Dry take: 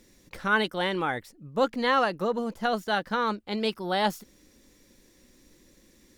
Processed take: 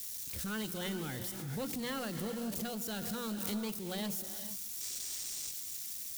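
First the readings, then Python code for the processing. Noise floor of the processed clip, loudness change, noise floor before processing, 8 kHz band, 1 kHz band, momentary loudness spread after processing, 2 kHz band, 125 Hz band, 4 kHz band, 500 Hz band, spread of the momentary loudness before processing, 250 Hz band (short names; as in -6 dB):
-43 dBFS, -10.0 dB, -60 dBFS, +12.5 dB, -19.0 dB, 2 LU, -16.0 dB, -2.5 dB, -8.0 dB, -14.0 dB, 7 LU, -6.0 dB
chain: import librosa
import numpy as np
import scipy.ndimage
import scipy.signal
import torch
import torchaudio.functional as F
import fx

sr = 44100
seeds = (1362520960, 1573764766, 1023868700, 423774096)

y = x + 0.5 * 10.0 ** (-26.0 / 20.0) * np.diff(np.sign(x), prepend=np.sign(x[:1]))
y = scipy.signal.sosfilt(scipy.signal.butter(4, 65.0, 'highpass', fs=sr, output='sos'), y)
y = fx.hum_notches(y, sr, base_hz=60, count=6)
y = fx.spec_box(y, sr, start_s=4.81, length_s=0.7, low_hz=330.0, high_hz=9300.0, gain_db=7)
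y = fx.tone_stack(y, sr, knobs='10-0-1')
y = fx.leveller(y, sr, passes=3)
y = fx.rev_gated(y, sr, seeds[0], gate_ms=470, shape='rising', drr_db=9.0)
y = fx.pre_swell(y, sr, db_per_s=30.0)
y = y * librosa.db_to_amplitude(3.0)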